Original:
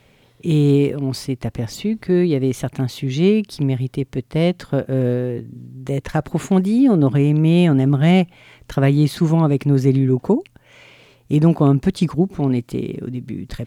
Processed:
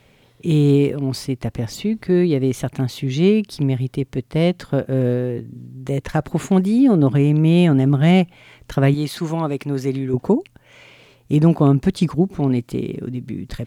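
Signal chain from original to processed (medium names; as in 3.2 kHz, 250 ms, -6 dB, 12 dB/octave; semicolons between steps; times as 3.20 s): 8.94–10.14 s: bass shelf 280 Hz -12 dB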